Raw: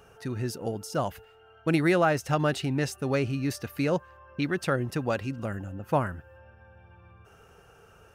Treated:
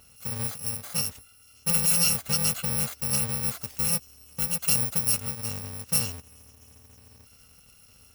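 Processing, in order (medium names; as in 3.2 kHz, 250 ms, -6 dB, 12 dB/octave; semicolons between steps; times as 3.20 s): bit-reversed sample order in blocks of 128 samples; 4.63–5.15 s: treble shelf 8.5 kHz +5 dB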